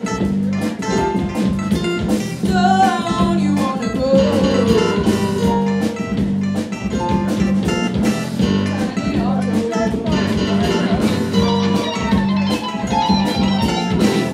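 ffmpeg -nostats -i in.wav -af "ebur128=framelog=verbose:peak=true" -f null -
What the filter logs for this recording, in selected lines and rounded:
Integrated loudness:
  I:         -17.4 LUFS
  Threshold: -27.4 LUFS
Loudness range:
  LRA:         2.7 LU
  Threshold: -37.3 LUFS
  LRA low:   -18.5 LUFS
  LRA high:  -15.8 LUFS
True peak:
  Peak:       -3.3 dBFS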